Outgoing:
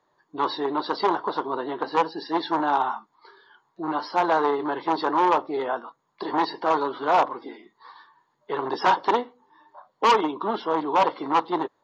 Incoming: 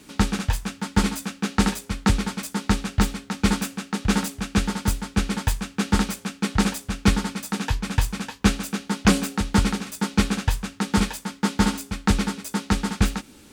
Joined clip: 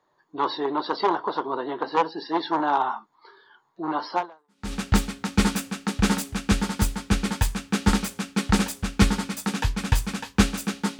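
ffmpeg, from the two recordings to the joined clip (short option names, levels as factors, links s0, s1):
-filter_complex "[0:a]apad=whole_dur=10.99,atrim=end=10.99,atrim=end=4.73,asetpts=PTS-STARTPTS[s0];[1:a]atrim=start=2.23:end=9.05,asetpts=PTS-STARTPTS[s1];[s0][s1]acrossfade=d=0.56:c1=exp:c2=exp"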